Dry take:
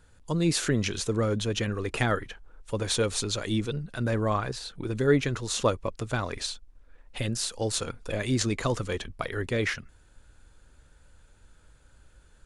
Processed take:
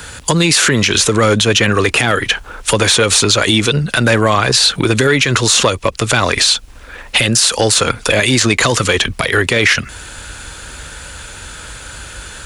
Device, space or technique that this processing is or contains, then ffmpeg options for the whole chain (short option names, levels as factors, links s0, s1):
mastering chain: -filter_complex "[0:a]highpass=43,equalizer=f=2700:t=o:w=0.77:g=2,acrossover=split=110|770|2100[s0][s1][s2][s3];[s0]acompressor=threshold=0.01:ratio=4[s4];[s1]acompressor=threshold=0.0447:ratio=4[s5];[s2]acompressor=threshold=0.0141:ratio=4[s6];[s3]acompressor=threshold=0.02:ratio=4[s7];[s4][s5][s6][s7]amix=inputs=4:normalize=0,acompressor=threshold=0.00891:ratio=2,asoftclip=type=tanh:threshold=0.0501,tiltshelf=f=830:g=-5.5,alimiter=level_in=35.5:limit=0.891:release=50:level=0:latency=1,volume=0.891"